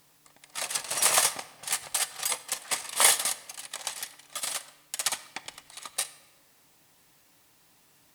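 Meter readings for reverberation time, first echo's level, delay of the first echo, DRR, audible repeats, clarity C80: 1.3 s, no echo, no echo, 11.0 dB, no echo, 17.5 dB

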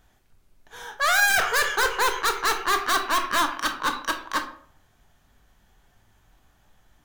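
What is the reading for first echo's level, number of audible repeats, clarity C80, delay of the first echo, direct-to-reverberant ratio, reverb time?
no echo, no echo, 13.5 dB, no echo, 5.5 dB, 0.50 s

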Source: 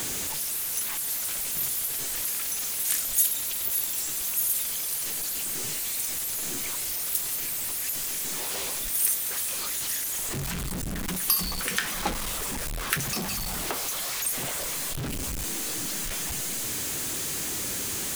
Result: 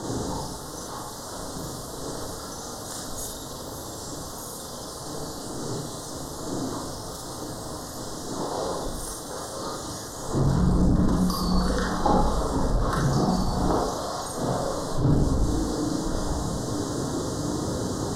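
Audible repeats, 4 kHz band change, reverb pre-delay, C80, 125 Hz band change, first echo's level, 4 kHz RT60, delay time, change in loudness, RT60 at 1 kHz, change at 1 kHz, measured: no echo, -4.0 dB, 32 ms, 5.5 dB, +13.0 dB, no echo, 0.40 s, no echo, -1.5 dB, 0.60 s, +9.0 dB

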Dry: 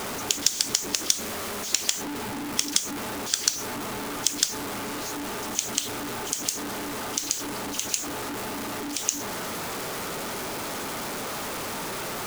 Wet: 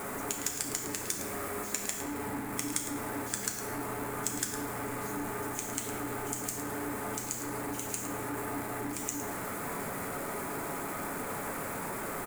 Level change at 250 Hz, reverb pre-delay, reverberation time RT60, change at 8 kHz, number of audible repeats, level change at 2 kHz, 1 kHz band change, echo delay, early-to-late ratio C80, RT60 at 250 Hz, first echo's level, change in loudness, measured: -3.0 dB, 7 ms, 2.2 s, -9.0 dB, 1, -5.0 dB, -3.5 dB, 109 ms, 5.5 dB, 3.0 s, -10.5 dB, -7.5 dB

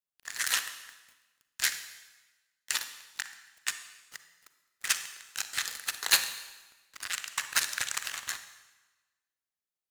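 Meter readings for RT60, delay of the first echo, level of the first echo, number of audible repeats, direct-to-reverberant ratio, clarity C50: 1.2 s, no echo, no echo, no echo, 9.5 dB, 10.5 dB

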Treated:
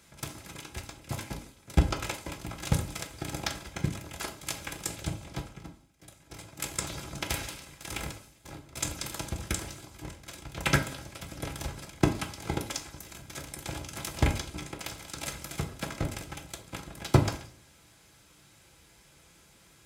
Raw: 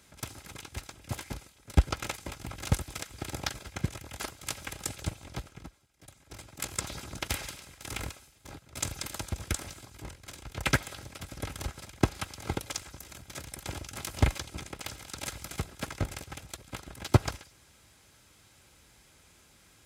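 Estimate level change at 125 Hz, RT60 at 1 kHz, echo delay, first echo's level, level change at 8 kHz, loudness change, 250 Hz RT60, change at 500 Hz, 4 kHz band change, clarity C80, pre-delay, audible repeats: +1.0 dB, 0.45 s, no echo, no echo, +1.0 dB, +1.0 dB, 0.60 s, +2.0 dB, +1.0 dB, 17.0 dB, 6 ms, no echo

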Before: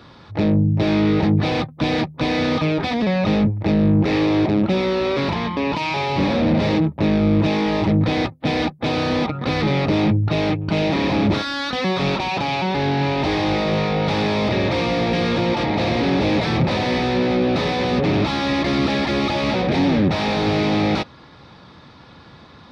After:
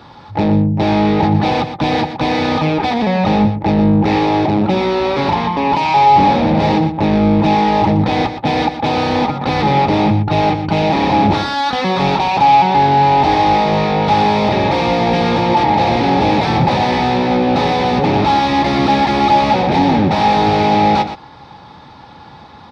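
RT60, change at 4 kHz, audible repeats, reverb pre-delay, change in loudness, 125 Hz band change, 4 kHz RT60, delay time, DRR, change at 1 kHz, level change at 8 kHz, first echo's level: no reverb, +3.5 dB, 1, no reverb, +6.0 dB, +3.0 dB, no reverb, 120 ms, no reverb, +13.0 dB, no reading, -10.0 dB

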